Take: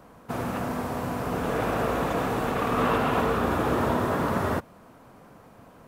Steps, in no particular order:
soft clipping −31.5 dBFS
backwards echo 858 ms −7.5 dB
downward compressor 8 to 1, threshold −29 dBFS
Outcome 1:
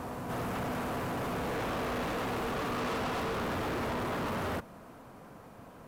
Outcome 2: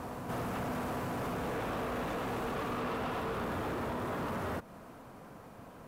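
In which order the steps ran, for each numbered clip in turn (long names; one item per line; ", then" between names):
backwards echo, then soft clipping, then downward compressor
downward compressor, then backwards echo, then soft clipping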